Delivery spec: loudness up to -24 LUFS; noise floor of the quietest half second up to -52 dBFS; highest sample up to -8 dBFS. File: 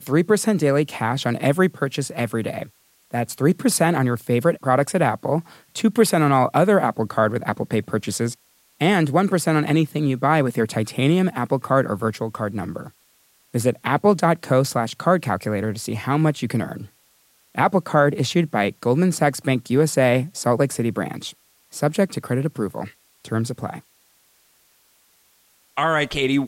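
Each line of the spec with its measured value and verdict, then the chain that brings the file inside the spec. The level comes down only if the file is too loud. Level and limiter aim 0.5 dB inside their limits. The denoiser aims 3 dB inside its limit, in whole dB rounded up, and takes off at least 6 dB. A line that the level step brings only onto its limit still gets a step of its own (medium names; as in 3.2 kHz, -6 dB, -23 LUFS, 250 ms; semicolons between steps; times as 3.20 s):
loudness -21.0 LUFS: fail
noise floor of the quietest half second -60 dBFS: pass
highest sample -5.0 dBFS: fail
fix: trim -3.5 dB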